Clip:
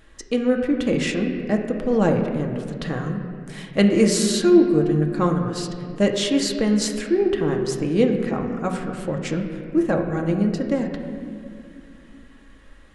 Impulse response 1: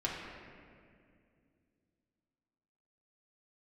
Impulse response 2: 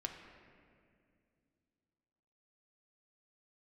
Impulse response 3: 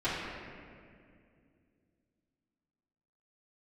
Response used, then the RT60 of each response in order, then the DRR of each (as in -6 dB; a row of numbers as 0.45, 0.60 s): 2; 2.3, 2.3, 2.3 s; -5.5, 2.0, -15.0 dB